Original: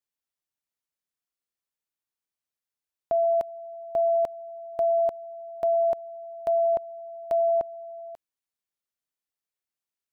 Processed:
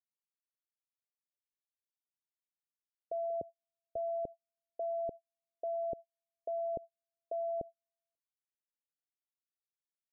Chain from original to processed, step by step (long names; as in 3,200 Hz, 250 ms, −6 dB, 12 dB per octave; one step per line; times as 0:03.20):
0:03.30–0:03.97: high-pass filter 78 Hz 24 dB per octave
noise gate −31 dBFS, range −44 dB
Butterworth low-pass 520 Hz 36 dB per octave